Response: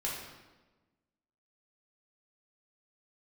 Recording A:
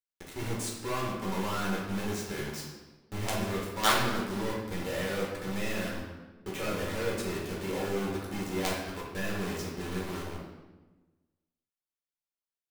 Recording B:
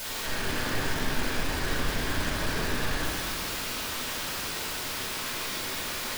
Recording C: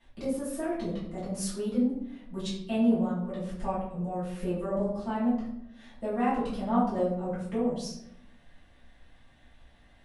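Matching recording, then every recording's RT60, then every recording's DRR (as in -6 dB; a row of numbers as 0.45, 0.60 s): A; 1.2, 2.0, 0.80 s; -4.5, -9.0, -12.0 dB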